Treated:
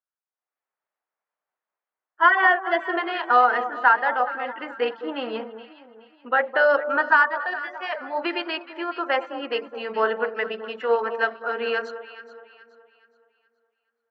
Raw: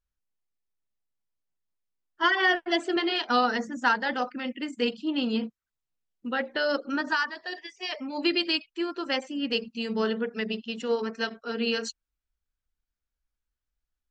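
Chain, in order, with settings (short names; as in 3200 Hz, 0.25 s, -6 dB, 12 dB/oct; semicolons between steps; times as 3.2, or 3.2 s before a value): AGC gain up to 15 dB; Butterworth band-pass 1000 Hz, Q 0.8; on a send: echo with dull and thin repeats by turns 0.211 s, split 1200 Hz, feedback 60%, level -10 dB; on the sum: gain -2 dB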